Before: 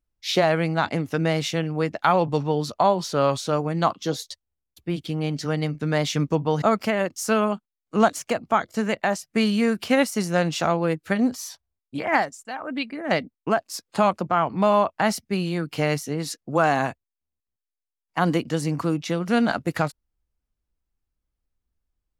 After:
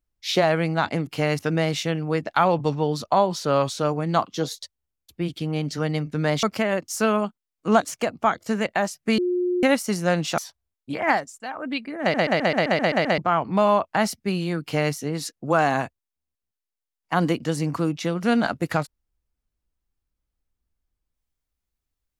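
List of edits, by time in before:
6.11–6.71 s: delete
9.46–9.91 s: bleep 358 Hz -20 dBFS
10.66–11.43 s: delete
13.06 s: stutter in place 0.13 s, 9 plays
15.67–15.99 s: copy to 1.07 s

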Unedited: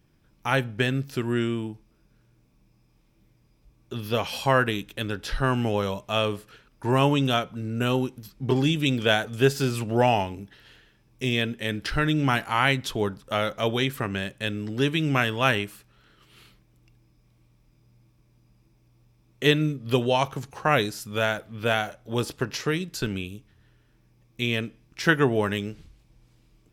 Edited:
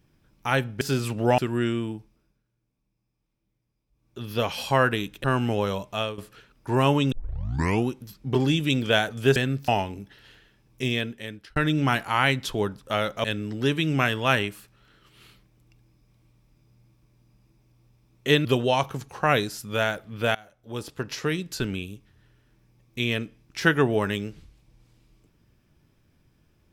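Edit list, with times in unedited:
0.81–1.13 s: swap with 9.52–10.09 s
1.71–4.13 s: dip -15.5 dB, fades 0.47 s
4.99–5.40 s: delete
6.06–6.34 s: fade out, to -14 dB
7.28 s: tape start 0.76 s
11.24–11.97 s: fade out
13.65–14.40 s: delete
19.61–19.87 s: delete
21.77–22.79 s: fade in, from -24 dB

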